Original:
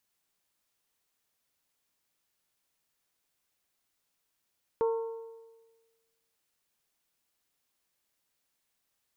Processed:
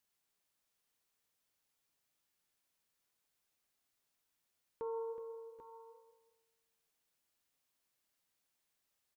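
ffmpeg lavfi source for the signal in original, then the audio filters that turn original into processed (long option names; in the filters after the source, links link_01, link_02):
-f lavfi -i "aevalsrc='0.0708*pow(10,-3*t/1.34)*sin(2*PI*455*t)+0.0251*pow(10,-3*t/1.088)*sin(2*PI*910*t)+0.00891*pow(10,-3*t/1.03)*sin(2*PI*1092*t)+0.00316*pow(10,-3*t/0.964)*sin(2*PI*1365*t)':duration=1.55:sample_rate=44100"
-filter_complex "[0:a]alimiter=level_in=6dB:limit=-24dB:level=0:latency=1,volume=-6dB,flanger=delay=7.1:depth=7.6:regen=82:speed=0.52:shape=sinusoidal,asplit=2[link_01][link_02];[link_02]aecho=0:1:371|778|790:0.282|0.112|0.282[link_03];[link_01][link_03]amix=inputs=2:normalize=0"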